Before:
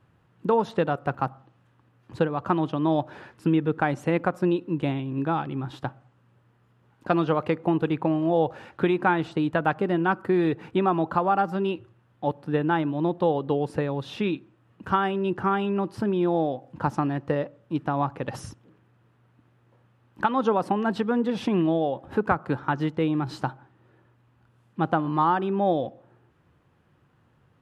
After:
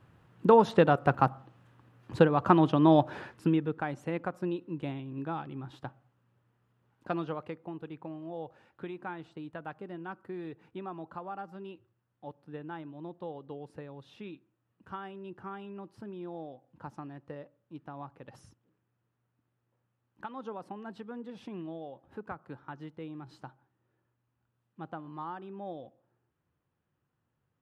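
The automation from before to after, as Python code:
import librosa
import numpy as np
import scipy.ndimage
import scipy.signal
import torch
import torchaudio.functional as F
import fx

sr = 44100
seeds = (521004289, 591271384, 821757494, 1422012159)

y = fx.gain(x, sr, db=fx.line((3.18, 2.0), (3.81, -10.0), (7.13, -10.0), (7.68, -18.0)))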